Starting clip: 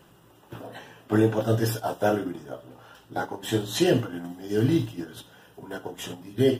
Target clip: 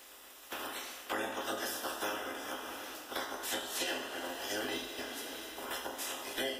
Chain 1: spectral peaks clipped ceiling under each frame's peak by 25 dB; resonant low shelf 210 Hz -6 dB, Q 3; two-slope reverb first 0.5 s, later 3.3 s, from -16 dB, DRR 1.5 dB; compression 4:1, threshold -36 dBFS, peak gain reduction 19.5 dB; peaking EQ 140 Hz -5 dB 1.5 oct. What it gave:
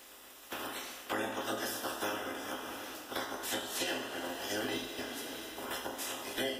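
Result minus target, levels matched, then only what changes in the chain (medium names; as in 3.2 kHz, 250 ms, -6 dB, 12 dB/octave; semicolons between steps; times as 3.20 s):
125 Hz band +6.0 dB
change: peaking EQ 140 Hz -13.5 dB 1.5 oct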